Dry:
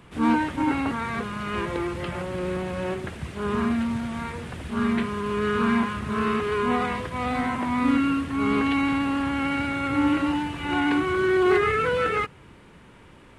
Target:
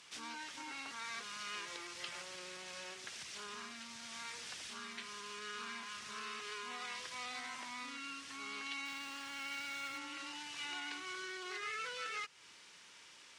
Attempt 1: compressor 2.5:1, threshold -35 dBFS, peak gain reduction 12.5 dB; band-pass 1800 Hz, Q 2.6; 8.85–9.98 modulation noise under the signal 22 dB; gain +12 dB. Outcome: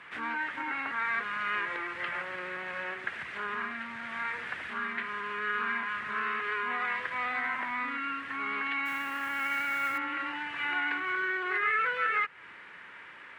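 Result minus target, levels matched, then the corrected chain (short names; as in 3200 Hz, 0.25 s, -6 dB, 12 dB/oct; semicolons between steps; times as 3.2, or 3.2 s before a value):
4000 Hz band -12.0 dB
compressor 2.5:1, threshold -35 dBFS, peak gain reduction 12.5 dB; band-pass 5600 Hz, Q 2.6; 8.85–9.98 modulation noise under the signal 22 dB; gain +12 dB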